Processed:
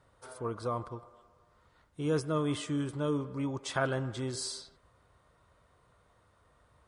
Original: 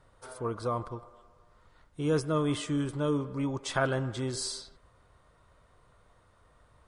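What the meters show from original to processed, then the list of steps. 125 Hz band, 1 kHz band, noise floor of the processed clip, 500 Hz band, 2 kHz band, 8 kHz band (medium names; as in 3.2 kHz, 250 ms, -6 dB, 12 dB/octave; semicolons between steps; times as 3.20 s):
-2.5 dB, -2.5 dB, -68 dBFS, -2.5 dB, -2.5 dB, -2.5 dB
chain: high-pass 51 Hz; trim -2.5 dB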